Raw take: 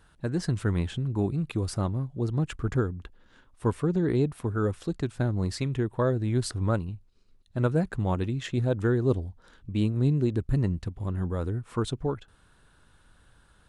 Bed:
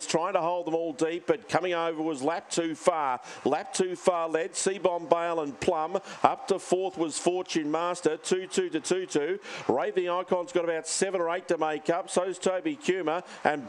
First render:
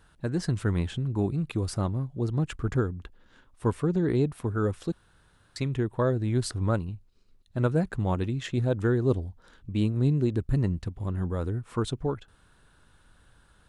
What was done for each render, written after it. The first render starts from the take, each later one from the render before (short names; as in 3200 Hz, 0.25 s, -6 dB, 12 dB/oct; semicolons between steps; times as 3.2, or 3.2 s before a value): 4.92–5.56 room tone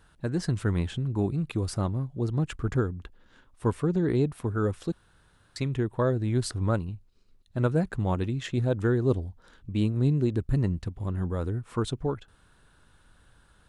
nothing audible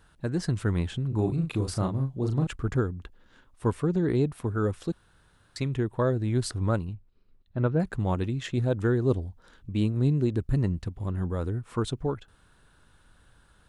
1.08–2.47 doubler 37 ms -5 dB; 6.93–7.8 air absorption 280 m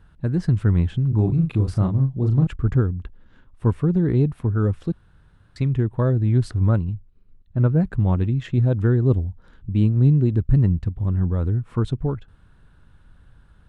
tone controls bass +10 dB, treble -10 dB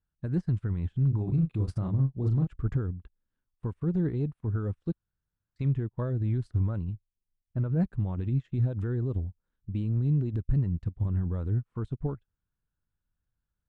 limiter -17 dBFS, peak gain reduction 10.5 dB; upward expander 2.5:1, over -42 dBFS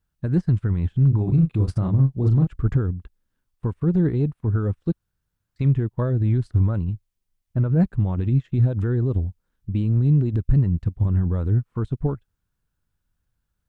gain +8 dB